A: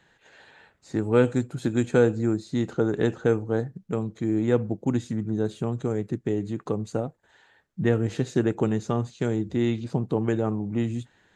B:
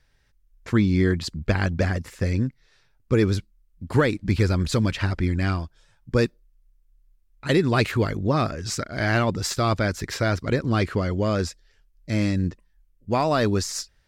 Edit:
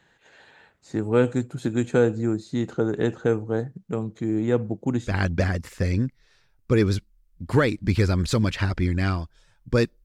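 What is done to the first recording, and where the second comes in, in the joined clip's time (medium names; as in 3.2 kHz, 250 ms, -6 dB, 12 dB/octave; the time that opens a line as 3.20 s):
A
5.10 s: go over to B from 1.51 s, crossfade 0.10 s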